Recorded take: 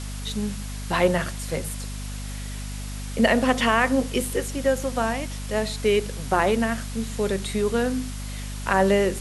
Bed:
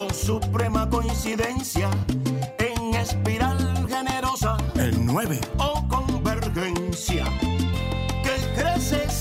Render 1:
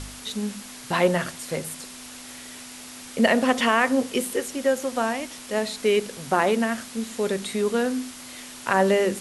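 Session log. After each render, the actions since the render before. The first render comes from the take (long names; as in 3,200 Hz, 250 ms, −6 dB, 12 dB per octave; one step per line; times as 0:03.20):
hum removal 50 Hz, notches 4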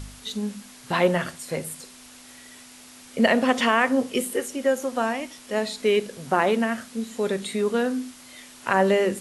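noise reduction from a noise print 6 dB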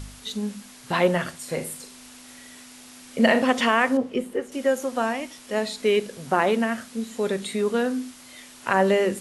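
0:01.38–0:03.42: flutter between parallel walls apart 6.8 metres, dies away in 0.27 s
0:03.97–0:04.52: low-pass filter 1,200 Hz 6 dB per octave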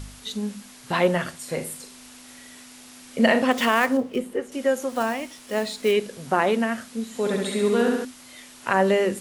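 0:03.51–0:04.20: gap after every zero crossing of 0.051 ms
0:04.89–0:05.95: one scale factor per block 5 bits
0:07.08–0:08.05: flutter between parallel walls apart 11.7 metres, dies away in 1.1 s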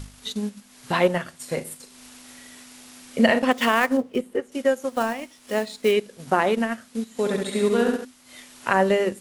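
transient designer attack +2 dB, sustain −8 dB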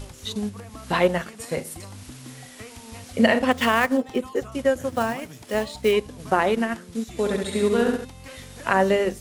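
mix in bed −18 dB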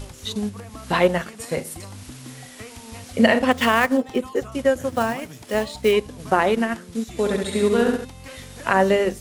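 level +2 dB
brickwall limiter −3 dBFS, peak gain reduction 1 dB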